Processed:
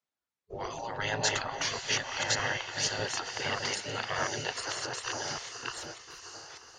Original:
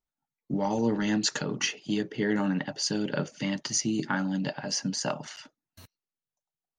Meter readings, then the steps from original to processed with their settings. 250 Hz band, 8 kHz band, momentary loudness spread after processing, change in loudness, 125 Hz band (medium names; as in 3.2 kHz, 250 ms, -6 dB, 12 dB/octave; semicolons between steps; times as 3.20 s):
-17.5 dB, -1.5 dB, 14 LU, -3.0 dB, -7.0 dB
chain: chunks repeated in reverse 598 ms, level -1 dB; distance through air 59 m; echo that smears into a reverb 550 ms, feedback 41%, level -11 dB; spectral gate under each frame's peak -15 dB weak; trim +4 dB